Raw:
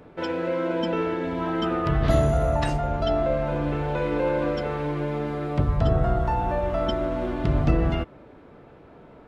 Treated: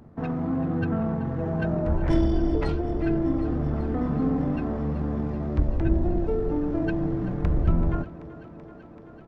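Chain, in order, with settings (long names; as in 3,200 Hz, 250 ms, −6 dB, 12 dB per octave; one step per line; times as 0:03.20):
stylus tracing distortion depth 0.025 ms
pitch shifter −12 semitones
feedback echo with a high-pass in the loop 383 ms, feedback 82%, high-pass 170 Hz, level −15.5 dB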